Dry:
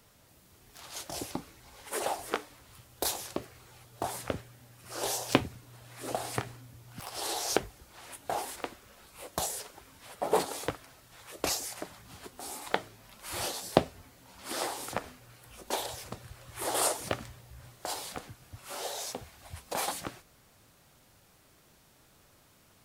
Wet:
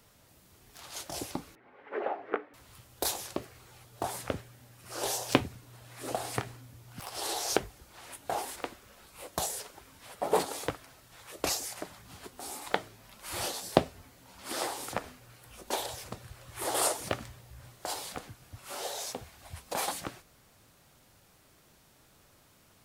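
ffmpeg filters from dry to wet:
ffmpeg -i in.wav -filter_complex "[0:a]asettb=1/sr,asplit=3[link_01][link_02][link_03];[link_01]atrim=end=1.554[link_04];[link_02]atrim=start=1.55:end=2.54,asetpts=PTS-STARTPTS,afade=type=in:duration=0.004:curve=qsin,afade=type=out:start_time=0.986:duration=0.004:curve=qsin,highpass=250,equalizer=frequency=270:width_type=q:width=4:gain=4,equalizer=frequency=410:width_type=q:width=4:gain=4,equalizer=frequency=970:width_type=q:width=4:gain=-5,lowpass=frequency=2100:width=0.5412,lowpass=frequency=2100:width=1.3066[link_05];[link_03]atrim=start=2.536[link_06];[link_04][link_05]acrossfade=duration=0.004:curve1=hsin:curve2=qsin[link_07];[link_07][link_06]acrossfade=duration=0.004:curve1=qsin:curve2=hsin" out.wav

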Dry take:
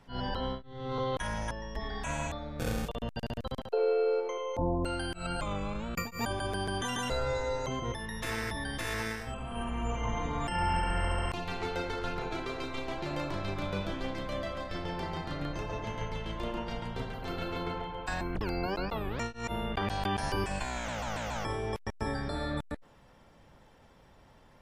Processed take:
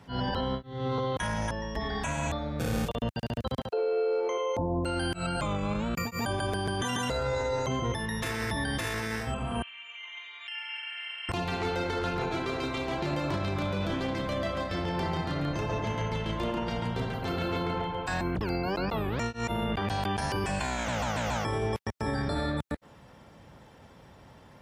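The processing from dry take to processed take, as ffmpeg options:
ffmpeg -i in.wav -filter_complex "[0:a]asettb=1/sr,asplit=3[link_01][link_02][link_03];[link_01]atrim=end=9.624[link_04];[link_02]atrim=start=9.62:end=11.29,asetpts=PTS-STARTPTS,afade=type=in:duration=0.004:curve=qsin,afade=type=out:start_time=1.666:duration=0.004:curve=qsin,asuperpass=centerf=2800:order=4:qfactor=1.8[link_05];[link_03]atrim=start=11.286[link_06];[link_04][link_05]acrossfade=duration=0.004:curve1=hsin:curve2=qsin[link_07];[link_07][link_06]acrossfade=duration=0.004:curve1=qsin:curve2=hsin,highpass=80,lowshelf=frequency=180:gain=5.5,alimiter=level_in=3.5dB:limit=-24dB:level=0:latency=1:release=21,volume=-3.5dB,volume=5.5dB" out.wav

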